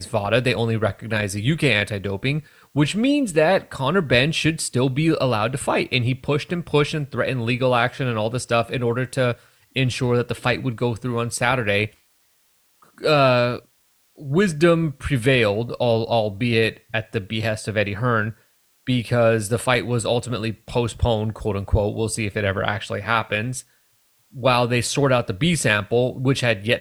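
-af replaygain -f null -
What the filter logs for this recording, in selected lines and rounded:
track_gain = +0.8 dB
track_peak = 0.558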